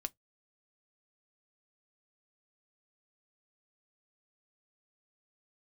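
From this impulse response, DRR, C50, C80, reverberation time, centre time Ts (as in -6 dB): 9.5 dB, 35.0 dB, 48.5 dB, 0.15 s, 2 ms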